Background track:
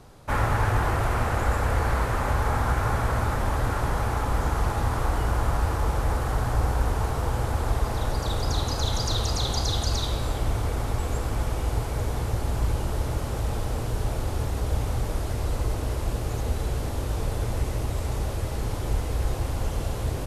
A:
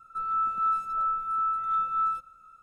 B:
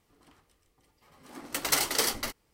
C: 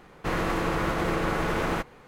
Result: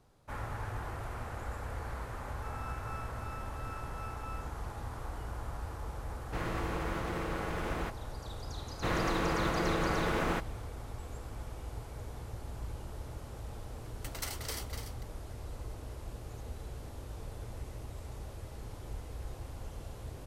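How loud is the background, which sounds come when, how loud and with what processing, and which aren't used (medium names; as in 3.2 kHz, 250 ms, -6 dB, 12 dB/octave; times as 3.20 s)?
background track -16 dB
2.28 s: add A -17 dB + partial rectifier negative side -12 dB
6.08 s: add C -10 dB
8.58 s: add C -4.5 dB
12.50 s: add B -14 dB + delay 290 ms -8.5 dB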